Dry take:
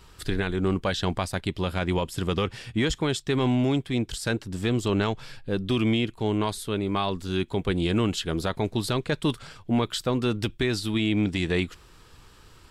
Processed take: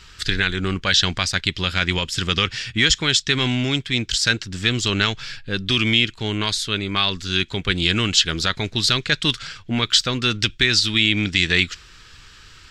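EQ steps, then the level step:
flat-topped bell 3,100 Hz +15 dB 2.8 octaves
dynamic equaliser 5,400 Hz, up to +6 dB, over −31 dBFS, Q 0.82
low-shelf EQ 220 Hz +8 dB
−3.5 dB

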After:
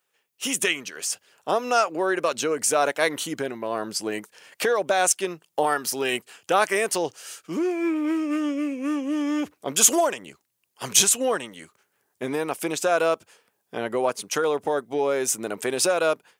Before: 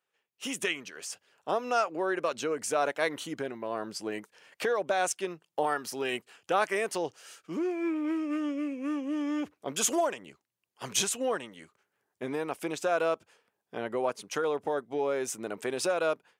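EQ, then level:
high-shelf EQ 5,700 Hz +9.5 dB
+6.0 dB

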